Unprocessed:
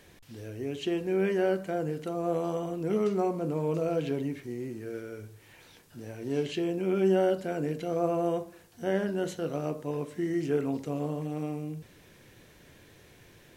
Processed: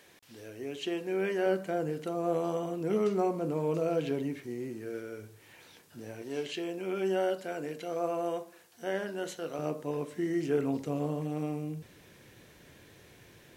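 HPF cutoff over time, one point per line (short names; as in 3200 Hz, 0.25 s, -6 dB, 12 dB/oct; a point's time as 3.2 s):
HPF 6 dB/oct
440 Hz
from 1.46 s 160 Hz
from 6.22 s 630 Hz
from 9.59 s 170 Hz
from 10.58 s 51 Hz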